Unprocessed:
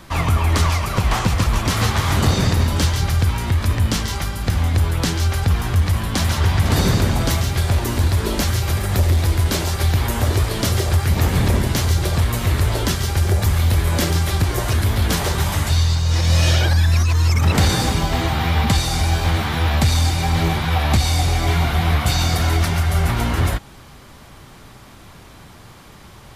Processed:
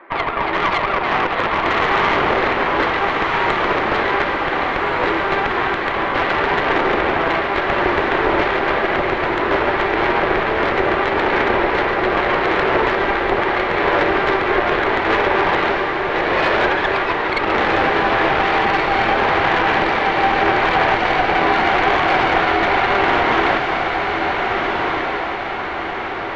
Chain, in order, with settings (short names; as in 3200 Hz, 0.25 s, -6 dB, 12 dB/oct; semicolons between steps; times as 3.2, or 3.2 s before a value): AGC gain up to 11.5 dB; elliptic band-pass 350–2100 Hz, stop band 50 dB; limiter -13.5 dBFS, peak gain reduction 8 dB; added harmonics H 4 -11 dB, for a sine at -9.5 dBFS; diffused feedback echo 1.544 s, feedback 53%, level -3 dB; gain +3.5 dB